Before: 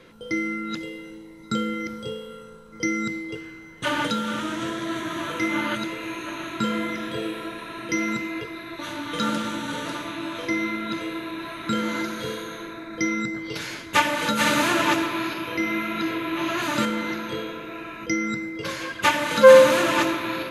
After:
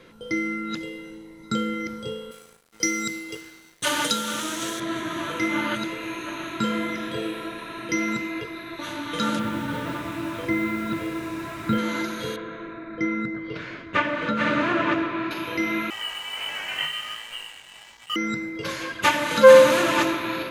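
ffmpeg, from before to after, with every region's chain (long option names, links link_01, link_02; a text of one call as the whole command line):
ffmpeg -i in.wav -filter_complex "[0:a]asettb=1/sr,asplit=3[link_01][link_02][link_03];[link_01]atrim=end=2.314[link_04];[link_02]atrim=start=2.31:end=4.8,asetpts=PTS-STARTPTS,afade=type=in:duration=0.004:curve=qsin,afade=type=out:start_time=2.486:duration=0.004:curve=qsin,bass=frequency=250:gain=-6,treble=frequency=4000:gain=14,aeval=exprs='sgn(val(0))*max(abs(val(0))-0.00596,0)':channel_layout=same[link_05];[link_03]atrim=start=4.796[link_06];[link_04][link_05]acrossfade=duration=0.004:curve1=hsin:curve2=qsin[link_07];[link_07][link_06]acrossfade=duration=0.004:curve1=qsin:curve2=hsin,asettb=1/sr,asplit=3[link_08][link_09][link_10];[link_08]atrim=end=9.394[link_11];[link_09]atrim=start=9.39:end=11.78,asetpts=PTS-STARTPTS,afade=type=in:duration=0.004:curve=qsin,afade=type=out:start_time=2.386:duration=0.004:curve=qsin,lowpass=2700,equalizer=frequency=86:width=0.73:gain=10.5,acrusher=bits=6:mix=0:aa=0.5[link_12];[link_10]atrim=start=11.776[link_13];[link_11][link_12]acrossfade=duration=0.004:curve1=hsin:curve2=qsin[link_14];[link_14][link_13]acrossfade=duration=0.004:curve1=qsin:curve2=hsin,asettb=1/sr,asplit=3[link_15][link_16][link_17];[link_15]atrim=end=12.364[link_18];[link_16]atrim=start=12.36:end=15.31,asetpts=PTS-STARTPTS,afade=type=in:duration=0.004:curve=qsin,afade=type=out:start_time=2.946:duration=0.004:curve=qsin,lowpass=2100,bandreject=frequency=860:width=5.9[link_19];[link_17]atrim=start=15.306[link_20];[link_18][link_19]acrossfade=duration=0.004:curve1=hsin:curve2=qsin[link_21];[link_21][link_20]acrossfade=duration=0.004:curve1=qsin:curve2=hsin,asettb=1/sr,asplit=3[link_22][link_23][link_24];[link_22]atrim=end=15.904[link_25];[link_23]atrim=start=15.9:end=18.16,asetpts=PTS-STARTPTS,afade=type=in:duration=0.004:curve=qsin,afade=type=out:start_time=2.256:duration=0.004:curve=qsin,lowpass=frequency=2800:width_type=q:width=0.5098,lowpass=frequency=2800:width_type=q:width=0.6013,lowpass=frequency=2800:width_type=q:width=0.9,lowpass=frequency=2800:width_type=q:width=2.563,afreqshift=-3300,aeval=exprs='sgn(val(0))*max(abs(val(0))-0.015,0)':channel_layout=same,flanger=delay=17:depth=4.8:speed=1.4[link_26];[link_24]atrim=start=18.156[link_27];[link_25][link_26]acrossfade=duration=0.004:curve1=hsin:curve2=qsin[link_28];[link_28][link_27]acrossfade=duration=0.004:curve1=qsin:curve2=hsin" out.wav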